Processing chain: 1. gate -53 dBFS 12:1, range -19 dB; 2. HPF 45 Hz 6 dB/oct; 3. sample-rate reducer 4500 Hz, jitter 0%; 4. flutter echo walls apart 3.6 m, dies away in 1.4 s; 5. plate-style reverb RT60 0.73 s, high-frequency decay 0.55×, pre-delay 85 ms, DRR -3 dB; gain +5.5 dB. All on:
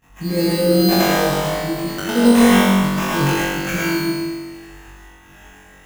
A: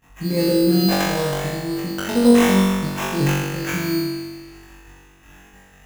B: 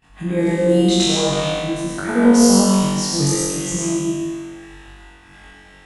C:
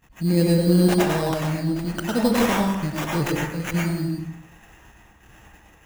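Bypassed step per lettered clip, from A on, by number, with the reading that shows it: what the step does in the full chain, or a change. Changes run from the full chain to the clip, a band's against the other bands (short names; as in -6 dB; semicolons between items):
5, echo-to-direct 11.5 dB to 6.5 dB; 3, distortion -7 dB; 4, echo-to-direct 11.5 dB to 3.0 dB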